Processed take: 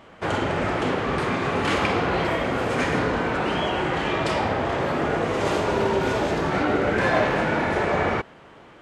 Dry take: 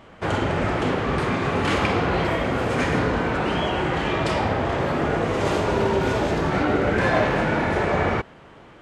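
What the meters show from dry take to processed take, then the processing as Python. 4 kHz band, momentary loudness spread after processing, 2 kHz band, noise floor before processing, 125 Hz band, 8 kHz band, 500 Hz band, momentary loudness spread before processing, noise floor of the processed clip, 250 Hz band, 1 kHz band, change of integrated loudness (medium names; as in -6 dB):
0.0 dB, 3 LU, 0.0 dB, -47 dBFS, -4.0 dB, 0.0 dB, -0.5 dB, 3 LU, -48 dBFS, -1.5 dB, 0.0 dB, -1.0 dB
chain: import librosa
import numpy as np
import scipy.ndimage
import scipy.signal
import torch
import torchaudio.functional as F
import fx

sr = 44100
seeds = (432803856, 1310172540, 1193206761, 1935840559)

y = fx.low_shelf(x, sr, hz=150.0, db=-6.5)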